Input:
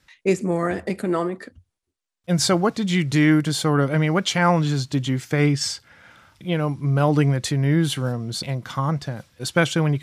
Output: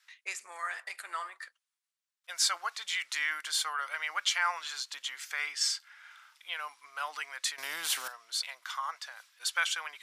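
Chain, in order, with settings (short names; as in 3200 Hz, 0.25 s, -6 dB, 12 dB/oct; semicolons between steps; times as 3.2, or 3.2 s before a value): in parallel at -2.5 dB: limiter -16 dBFS, peak gain reduction 10 dB; on the sum: HPF 1100 Hz 24 dB/oct; 7.58–8.08 spectral compressor 2:1; gain -8 dB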